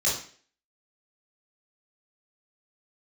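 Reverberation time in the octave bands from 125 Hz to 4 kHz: 0.40 s, 0.45 s, 0.50 s, 0.45 s, 0.50 s, 0.45 s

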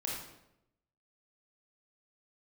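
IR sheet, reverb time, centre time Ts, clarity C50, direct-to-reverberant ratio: 0.85 s, 57 ms, 0.5 dB, -3.5 dB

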